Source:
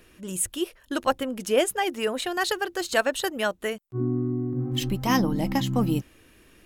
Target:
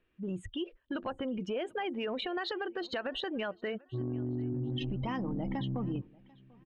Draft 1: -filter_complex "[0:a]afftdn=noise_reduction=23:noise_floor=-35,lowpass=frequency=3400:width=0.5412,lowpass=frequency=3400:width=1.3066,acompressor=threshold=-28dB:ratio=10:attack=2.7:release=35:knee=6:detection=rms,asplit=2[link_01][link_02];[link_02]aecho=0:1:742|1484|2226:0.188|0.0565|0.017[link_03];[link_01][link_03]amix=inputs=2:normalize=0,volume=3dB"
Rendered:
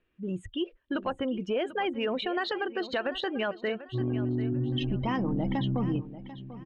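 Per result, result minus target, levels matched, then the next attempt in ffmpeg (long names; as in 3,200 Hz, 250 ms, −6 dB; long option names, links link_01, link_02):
echo-to-direct +10.5 dB; downward compressor: peak gain reduction −6 dB
-filter_complex "[0:a]afftdn=noise_reduction=23:noise_floor=-35,lowpass=frequency=3400:width=0.5412,lowpass=frequency=3400:width=1.3066,acompressor=threshold=-28dB:ratio=10:attack=2.7:release=35:knee=6:detection=rms,asplit=2[link_01][link_02];[link_02]aecho=0:1:742|1484:0.0562|0.0169[link_03];[link_01][link_03]amix=inputs=2:normalize=0,volume=3dB"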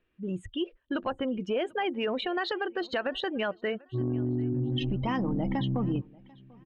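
downward compressor: peak gain reduction −6 dB
-filter_complex "[0:a]afftdn=noise_reduction=23:noise_floor=-35,lowpass=frequency=3400:width=0.5412,lowpass=frequency=3400:width=1.3066,acompressor=threshold=-34.5dB:ratio=10:attack=2.7:release=35:knee=6:detection=rms,asplit=2[link_01][link_02];[link_02]aecho=0:1:742|1484:0.0562|0.0169[link_03];[link_01][link_03]amix=inputs=2:normalize=0,volume=3dB"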